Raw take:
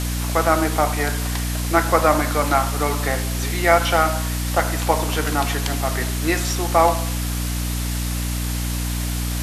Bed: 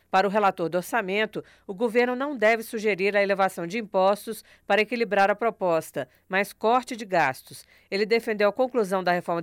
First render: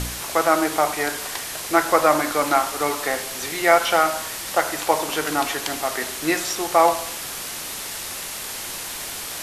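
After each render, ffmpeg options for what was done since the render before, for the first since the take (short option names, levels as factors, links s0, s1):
-af "bandreject=f=60:t=h:w=4,bandreject=f=120:t=h:w=4,bandreject=f=180:t=h:w=4,bandreject=f=240:t=h:w=4,bandreject=f=300:t=h:w=4"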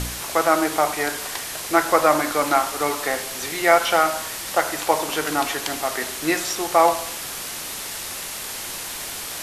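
-af anull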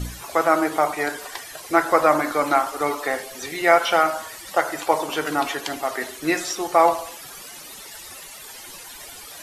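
-af "afftdn=nr=14:nf=-32"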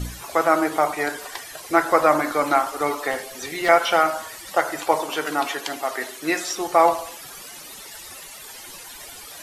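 -filter_complex "[0:a]asettb=1/sr,asplit=3[s0][s1][s2];[s0]atrim=end=3.114[s3];[s1]atrim=start=3.11:end=3.69,asetpts=PTS-STARTPTS,afade=t=in:d=0.004:c=qsin,afade=t=out:st=0.576:d=0.004:c=qsin,volume=8.41,asoftclip=hard,volume=0.119[s4];[s2]atrim=start=3.686[s5];[s3][s4]acrossfade=d=0.004:c1=hsin:c2=qsin[s6];[s6][s5]acrossfade=d=0.004:c1=qsin:c2=hsin,asettb=1/sr,asplit=3[s7][s8][s9];[s7]atrim=end=5.014[s10];[s8]atrim=start=5.01:end=6.54,asetpts=PTS-STARTPTS,afade=t=in:d=0.004:c=qsin,afade=t=out:st=1.526:d=0.004:c=qsin,highpass=f=260:p=1[s11];[s9]atrim=start=6.536[s12];[s10][s11]acrossfade=d=0.004:c1=hsin:c2=qsin[s13];[s13][s12]acrossfade=d=0.004:c1=qsin:c2=hsin"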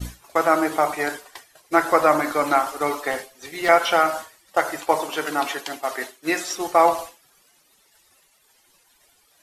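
-af "agate=range=0.0224:threshold=0.0501:ratio=3:detection=peak"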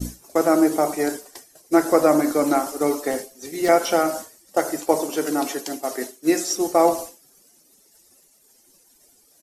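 -af "firequalizer=gain_entry='entry(110,0);entry(240,9);entry(990,-7);entry(3400,-7);entry(5500,5)':delay=0.05:min_phase=1"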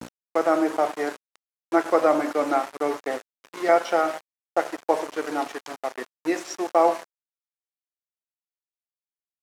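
-af "aeval=exprs='val(0)*gte(abs(val(0)),0.0473)':c=same,bandpass=f=1100:t=q:w=0.6:csg=0"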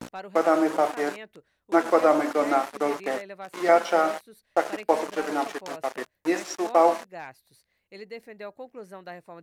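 -filter_complex "[1:a]volume=0.133[s0];[0:a][s0]amix=inputs=2:normalize=0"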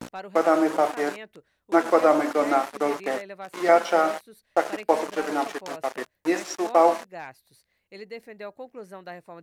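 -af "volume=1.12"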